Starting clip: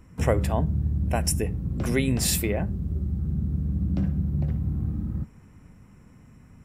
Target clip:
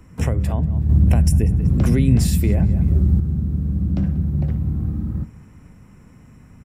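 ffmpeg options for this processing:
-filter_complex "[0:a]asettb=1/sr,asplit=3[s0][s1][s2];[s0]atrim=end=0.894[s3];[s1]atrim=start=0.89:end=3.2,asetpts=PTS-STARTPTS,afade=t=in:d=0.004:c=qsin,afade=t=out:st=2.306:d=0.004:c=qsin,acontrast=87[s4];[s2]atrim=start=3.196[s5];[s3][s4]acrossfade=d=0.004:c1=hsin:c2=qsin[s6];[s6][s5]acrossfade=d=0.004:c1=qsin:c2=hsin,asplit=2[s7][s8];[s8]adelay=188,lowpass=f=4600:p=1,volume=0.1,asplit=2[s9][s10];[s10]adelay=188,lowpass=f=4600:p=1,volume=0.31[s11];[s7][s9][s11]amix=inputs=3:normalize=0,acrossover=split=240[s12][s13];[s13]acompressor=threshold=0.0224:ratio=10[s14];[s12][s14]amix=inputs=2:normalize=0,volume=1.78"

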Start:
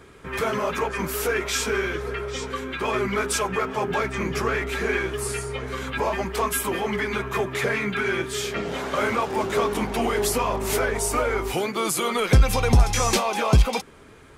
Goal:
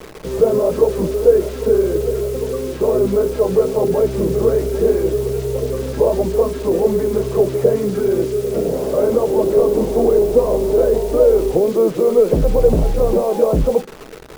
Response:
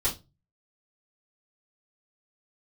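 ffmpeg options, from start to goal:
-filter_complex "[0:a]lowshelf=f=90:g=2.5,asplit=2[s0][s1];[s1]acontrast=90,volume=0.75[s2];[s0][s2]amix=inputs=2:normalize=0,aeval=exprs='1*sin(PI/2*2*val(0)/1)':c=same,lowpass=f=490:t=q:w=3.4,acrusher=bits=3:mix=0:aa=0.000001,asplit=2[s3][s4];[1:a]atrim=start_sample=2205,asetrate=61740,aresample=44100[s5];[s4][s5]afir=irnorm=-1:irlink=0,volume=0.133[s6];[s3][s6]amix=inputs=2:normalize=0,volume=0.224"

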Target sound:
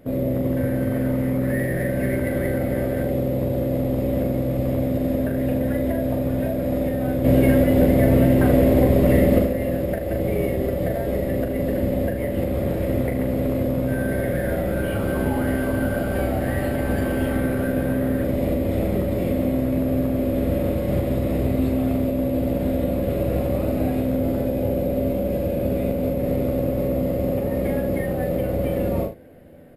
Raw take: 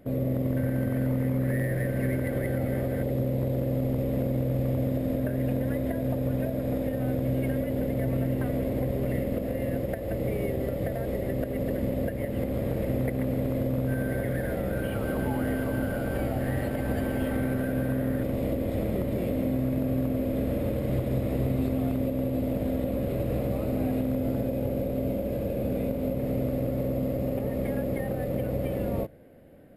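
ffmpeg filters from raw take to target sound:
-filter_complex "[0:a]asettb=1/sr,asplit=3[s0][s1][s2];[s0]atrim=end=7.244[s3];[s1]atrim=start=7.24:end=9.45,asetpts=PTS-STARTPTS,afade=t=in:d=0.004:c=qsin,afade=t=out:st=2.206:d=0.004:c=qsin,acontrast=72[s4];[s2]atrim=start=9.446[s5];[s3][s4]acrossfade=d=0.004:c1=hsin:c2=qsin[s6];[s6][s5]acrossfade=d=0.004:c1=qsin:c2=hsin,aecho=1:1:12|41|77:0.501|0.562|0.316,volume=1.58"

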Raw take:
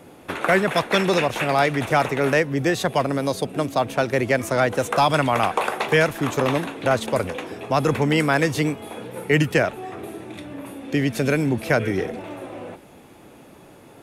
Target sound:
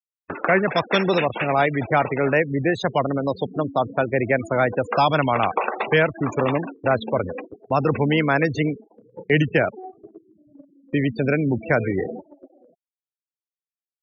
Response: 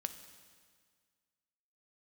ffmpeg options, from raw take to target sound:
-af "afftfilt=real='re*gte(hypot(re,im),0.0708)':imag='im*gte(hypot(re,im),0.0708)':win_size=1024:overlap=0.75,agate=range=0.141:threshold=0.0224:ratio=16:detection=peak"

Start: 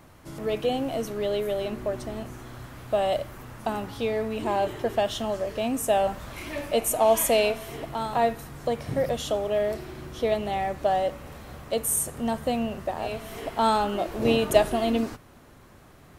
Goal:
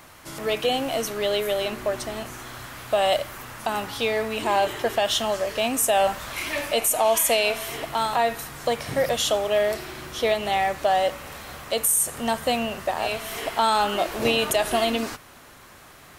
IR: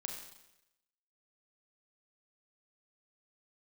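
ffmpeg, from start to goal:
-af "tiltshelf=f=650:g=-7,alimiter=limit=0.178:level=0:latency=1:release=112,volume=1.58"

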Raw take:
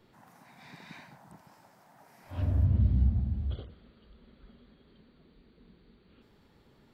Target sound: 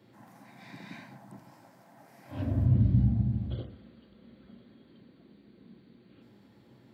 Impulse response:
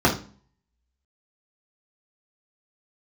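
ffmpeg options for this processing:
-filter_complex "[0:a]highpass=f=86:w=0.5412,highpass=f=86:w=1.3066,asplit=2[s0][s1];[1:a]atrim=start_sample=2205,lowpass=2600[s2];[s1][s2]afir=irnorm=-1:irlink=0,volume=0.0708[s3];[s0][s3]amix=inputs=2:normalize=0"

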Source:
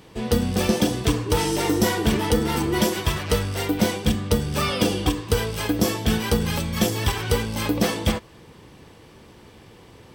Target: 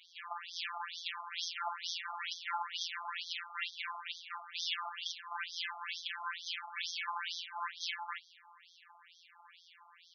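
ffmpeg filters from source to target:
-af "aeval=exprs='(tanh(22.4*val(0)+0.55)-tanh(0.55))/22.4':c=same,afftfilt=real='hypot(re,im)*cos(PI*b)':imag='0':win_size=1024:overlap=0.75,afftfilt=real='re*between(b*sr/1024,970*pow(4600/970,0.5+0.5*sin(2*PI*2.2*pts/sr))/1.41,970*pow(4600/970,0.5+0.5*sin(2*PI*2.2*pts/sr))*1.41)':imag='im*between(b*sr/1024,970*pow(4600/970,0.5+0.5*sin(2*PI*2.2*pts/sr))/1.41,970*pow(4600/970,0.5+0.5*sin(2*PI*2.2*pts/sr))*1.41)':win_size=1024:overlap=0.75,volume=1.68"

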